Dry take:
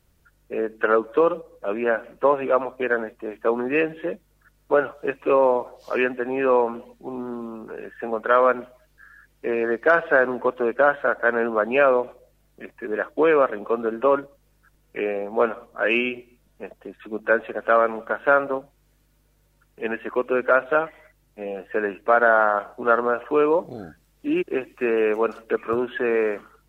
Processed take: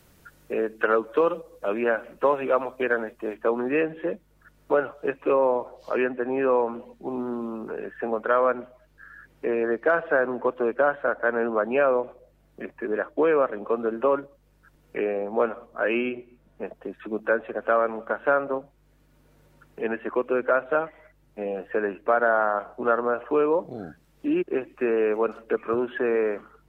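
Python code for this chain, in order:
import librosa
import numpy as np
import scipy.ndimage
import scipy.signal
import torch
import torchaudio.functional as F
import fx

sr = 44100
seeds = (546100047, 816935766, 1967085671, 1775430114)

y = fx.high_shelf(x, sr, hz=2800.0, db=fx.steps((0.0, 3.0), (3.33, -6.0), (5.32, -11.0)))
y = fx.band_squash(y, sr, depth_pct=40)
y = y * librosa.db_to_amplitude(-2.0)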